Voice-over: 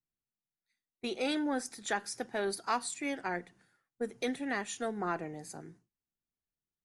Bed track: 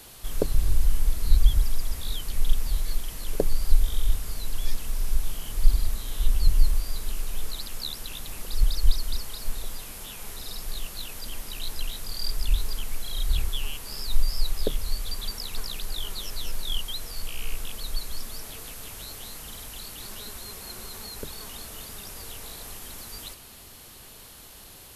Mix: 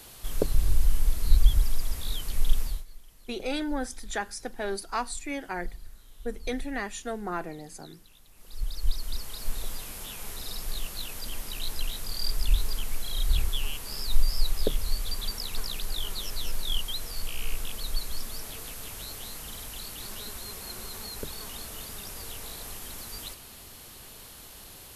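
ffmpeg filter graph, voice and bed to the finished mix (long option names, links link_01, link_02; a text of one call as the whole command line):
ffmpeg -i stem1.wav -i stem2.wav -filter_complex "[0:a]adelay=2250,volume=1.5dB[link_01];[1:a]volume=19dB,afade=type=out:start_time=2.61:duration=0.24:silence=0.112202,afade=type=in:start_time=8.34:duration=1.31:silence=0.1[link_02];[link_01][link_02]amix=inputs=2:normalize=0" out.wav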